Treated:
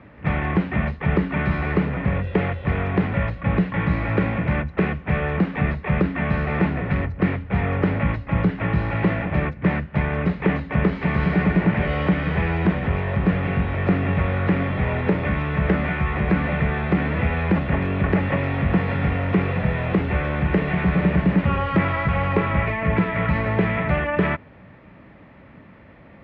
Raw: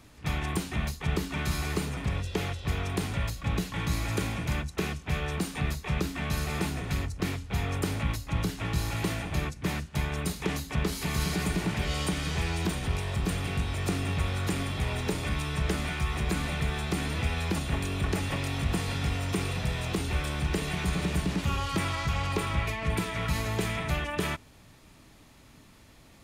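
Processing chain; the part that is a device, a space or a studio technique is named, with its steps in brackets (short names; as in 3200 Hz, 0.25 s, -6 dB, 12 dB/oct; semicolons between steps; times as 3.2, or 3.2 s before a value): bass cabinet (speaker cabinet 63–2300 Hz, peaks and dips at 190 Hz +6 dB, 550 Hz +7 dB, 1900 Hz +4 dB); gain +8 dB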